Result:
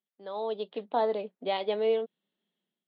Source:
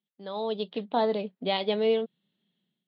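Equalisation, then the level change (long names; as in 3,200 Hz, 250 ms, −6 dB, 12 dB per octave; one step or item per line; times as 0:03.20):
high-pass filter 350 Hz 12 dB per octave
low-pass filter 1,700 Hz 6 dB per octave
0.0 dB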